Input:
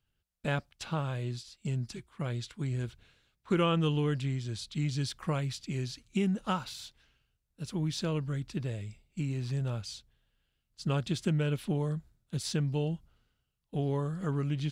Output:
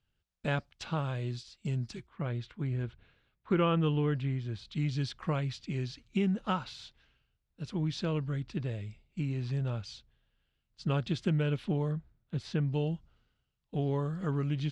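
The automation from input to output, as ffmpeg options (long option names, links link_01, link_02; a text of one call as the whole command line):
ffmpeg -i in.wav -af "asetnsamples=nb_out_samples=441:pad=0,asendcmd='2.07 lowpass f 2600;4.65 lowpass f 4300;11.91 lowpass f 2700;12.73 lowpass f 5300',lowpass=6000" out.wav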